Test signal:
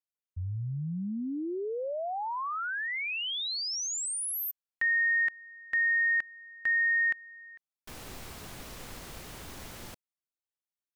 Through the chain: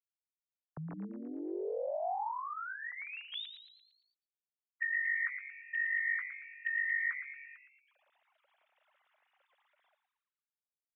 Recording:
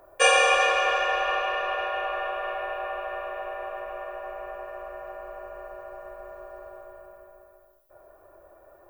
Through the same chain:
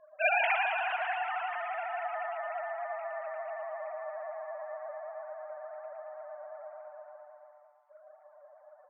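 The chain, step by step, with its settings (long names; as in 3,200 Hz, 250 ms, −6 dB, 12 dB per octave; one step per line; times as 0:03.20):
three sine waves on the formant tracks
echo with shifted repeats 114 ms, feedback 50%, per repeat +140 Hz, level −9.5 dB
level −8 dB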